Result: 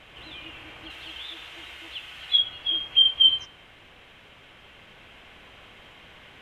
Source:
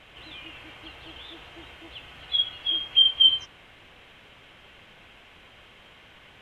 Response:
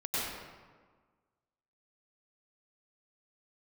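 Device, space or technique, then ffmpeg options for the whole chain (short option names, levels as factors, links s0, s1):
ducked reverb: -filter_complex "[0:a]asettb=1/sr,asplit=3[s0][s1][s2];[s0]atrim=end=0.904[s3];[s1]atrim=start=0.9:end=2.39,asetpts=PTS-STARTPTS,afade=t=in:d=0.004:c=qsin,afade=t=out:st=1.486:d=0.004:c=qsin,tiltshelf=f=1100:g=-6.5[s4];[s2]atrim=start=2.386[s5];[s3][s4]acrossfade=d=0.004:c1=hsin:c2=qsin[s6];[s6][s5]acrossfade=d=0.004:c1=qsin:c2=hsin,asplit=3[s7][s8][s9];[1:a]atrim=start_sample=2205[s10];[s8][s10]afir=irnorm=-1:irlink=0[s11];[s9]apad=whole_len=282843[s12];[s11][s12]sidechaincompress=threshold=0.00794:ratio=8:attack=16:release=1060,volume=0.299[s13];[s7][s13]amix=inputs=2:normalize=0"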